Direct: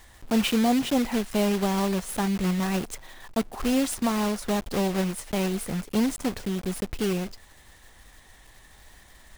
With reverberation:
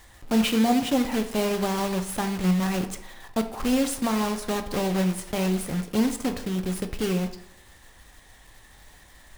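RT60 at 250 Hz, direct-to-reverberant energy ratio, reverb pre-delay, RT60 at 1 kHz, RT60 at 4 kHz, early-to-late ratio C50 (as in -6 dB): 0.70 s, 7.0 dB, 3 ms, 0.75 s, 0.55 s, 11.0 dB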